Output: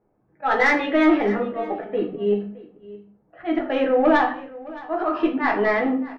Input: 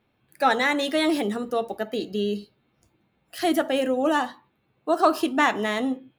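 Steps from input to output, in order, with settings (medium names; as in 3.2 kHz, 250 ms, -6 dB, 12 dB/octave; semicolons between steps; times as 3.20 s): low-pass 2.3 kHz 24 dB/octave; bass shelf 290 Hz -9.5 dB; level-controlled noise filter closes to 670 Hz, open at -19.5 dBFS; slow attack 163 ms; saturation -18.5 dBFS, distortion -18 dB; delay 617 ms -19 dB; reverberation RT60 0.45 s, pre-delay 6 ms, DRR 0 dB; trim +5.5 dB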